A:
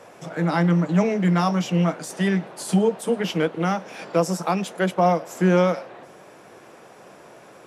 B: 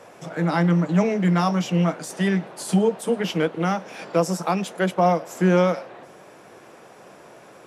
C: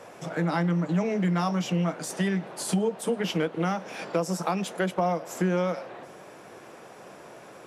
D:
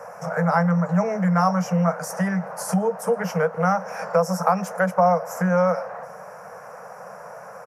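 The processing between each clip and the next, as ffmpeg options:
-af anull
-af "acompressor=threshold=0.0631:ratio=3"
-af "firequalizer=gain_entry='entry(120,0);entry(180,6);entry(320,-27);entry(470,8);entry(720,9);entry(1400,10);entry(3500,-20);entry(5500,5);entry(7800,-2);entry(13000,8)':delay=0.05:min_phase=1"

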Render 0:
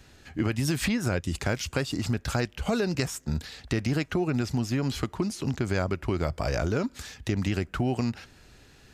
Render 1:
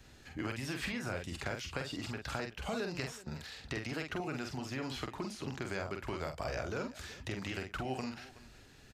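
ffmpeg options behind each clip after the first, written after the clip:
-filter_complex "[0:a]acrossover=split=450|4300[s0][s1][s2];[s0]acompressor=threshold=0.0126:ratio=4[s3];[s1]acompressor=threshold=0.0251:ratio=4[s4];[s2]acompressor=threshold=0.00316:ratio=4[s5];[s3][s4][s5]amix=inputs=3:normalize=0,asplit=2[s6][s7];[s7]aecho=0:1:46|374:0.562|0.133[s8];[s6][s8]amix=inputs=2:normalize=0,volume=0.562"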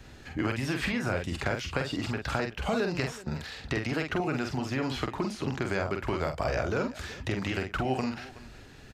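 -af "highshelf=f=3700:g=-7,volume=2.82"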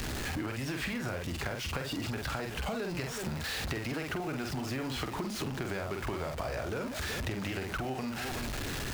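-af "aeval=exprs='val(0)+0.5*0.0282*sgn(val(0))':c=same,acompressor=threshold=0.0224:ratio=6"

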